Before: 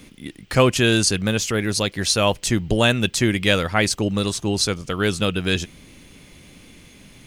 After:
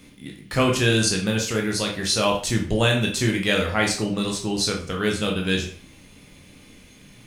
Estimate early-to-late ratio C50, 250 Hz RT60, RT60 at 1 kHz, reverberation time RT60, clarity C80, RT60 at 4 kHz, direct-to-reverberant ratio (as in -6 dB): 7.0 dB, 0.45 s, 0.45 s, 0.45 s, 12.0 dB, 0.40 s, 0.0 dB